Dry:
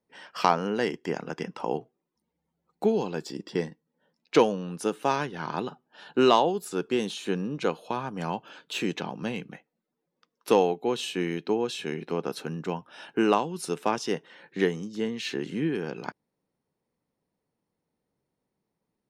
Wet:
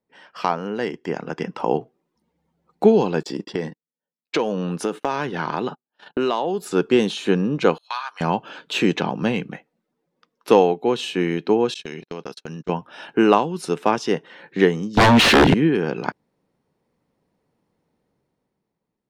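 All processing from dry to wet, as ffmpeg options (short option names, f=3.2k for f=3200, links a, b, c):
-filter_complex "[0:a]asettb=1/sr,asplit=3[a][b][c];[a]atrim=end=3.234[d];[b]atrim=start=3.23:end=6.66,asetpts=PTS-STARTPTS,afade=t=in:d=0.004:c=qsin,afade=t=out:st=3.426:d=0.004:c=qsin,highpass=f=130:p=1,agate=range=-32dB:threshold=-47dB:ratio=16:release=100:detection=peak,acompressor=threshold=-30dB:ratio=4:attack=3.2:release=140:knee=1:detection=peak[e];[c]atrim=start=6.656[f];[d][e]acrossfade=d=0.004:c1=hsin:c2=qsin[g];[g][f]acrossfade=d=0.004:c1=qsin:c2=hsin,asettb=1/sr,asplit=3[h][i][j];[h]atrim=end=7.784[k];[i]atrim=start=7.78:end=8.21,asetpts=PTS-STARTPTS,afade=t=in:d=0.004:c=qsin,afade=t=out:st=0.426:d=0.004:c=qsin,agate=range=-33dB:threshold=-40dB:ratio=3:release=100:detection=peak,highpass=f=1.1k:w=0.5412,highpass=f=1.1k:w=1.3066,equalizer=f=4.2k:t=o:w=0.26:g=15[l];[j]atrim=start=8.206[m];[k][l]acrossfade=d=0.004:c1=hsin:c2=qsin[n];[n][m]acrossfade=d=0.004:c1=qsin:c2=hsin,asettb=1/sr,asplit=3[o][p][q];[o]atrim=end=11.744[r];[p]atrim=start=11.74:end=12.69,asetpts=PTS-STARTPTS,afade=t=in:d=0.004:c=qsin,afade=t=out:st=0.946:d=0.004:c=qsin,agate=range=-46dB:threshold=-36dB:ratio=16:release=100:detection=peak,equalizer=f=5.4k:t=o:w=2:g=14.5,acompressor=threshold=-39dB:ratio=4:attack=3.2:release=140:knee=1:detection=peak[s];[q]atrim=start=12.686[t];[r][s]acrossfade=d=0.004:c1=hsin:c2=qsin[u];[u][t]acrossfade=d=0.004:c1=qsin:c2=hsin,asettb=1/sr,asplit=3[v][w][x];[v]atrim=end=14.974[y];[w]atrim=start=14.97:end=15.54,asetpts=PTS-STARTPTS,afade=t=in:d=0.004:c=qsin,afade=t=out:st=0.566:d=0.004:c=qsin,aeval=exprs='0.133*sin(PI/2*6.31*val(0)/0.133)':c=same,adynamicsmooth=sensitivity=3:basefreq=1.6k[z];[x]atrim=start=15.536[aa];[y][z]acrossfade=d=0.004:c1=hsin:c2=qsin[ab];[ab][aa]acrossfade=d=0.004:c1=qsin:c2=hsin,lowpass=f=3.8k:p=1,dynaudnorm=f=190:g=11:m=11.5dB"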